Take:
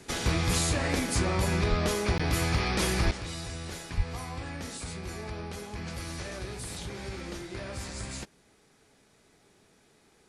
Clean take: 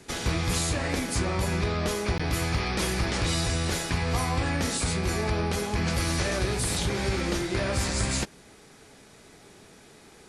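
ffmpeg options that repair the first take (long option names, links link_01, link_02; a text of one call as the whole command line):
ffmpeg -i in.wav -filter_complex "[0:a]asplit=3[link_01][link_02][link_03];[link_01]afade=type=out:start_time=1.69:duration=0.02[link_04];[link_02]highpass=frequency=140:width=0.5412,highpass=frequency=140:width=1.3066,afade=type=in:start_time=1.69:duration=0.02,afade=type=out:start_time=1.81:duration=0.02[link_05];[link_03]afade=type=in:start_time=1.81:duration=0.02[link_06];[link_04][link_05][link_06]amix=inputs=3:normalize=0,asplit=3[link_07][link_08][link_09];[link_07]afade=type=out:start_time=3.04:duration=0.02[link_10];[link_08]highpass=frequency=140:width=0.5412,highpass=frequency=140:width=1.3066,afade=type=in:start_time=3.04:duration=0.02,afade=type=out:start_time=3.16:duration=0.02[link_11];[link_09]afade=type=in:start_time=3.16:duration=0.02[link_12];[link_10][link_11][link_12]amix=inputs=3:normalize=0,asplit=3[link_13][link_14][link_15];[link_13]afade=type=out:start_time=3.96:duration=0.02[link_16];[link_14]highpass=frequency=140:width=0.5412,highpass=frequency=140:width=1.3066,afade=type=in:start_time=3.96:duration=0.02,afade=type=out:start_time=4.08:duration=0.02[link_17];[link_15]afade=type=in:start_time=4.08:duration=0.02[link_18];[link_16][link_17][link_18]amix=inputs=3:normalize=0,asetnsamples=nb_out_samples=441:pad=0,asendcmd='3.11 volume volume 11dB',volume=0dB" out.wav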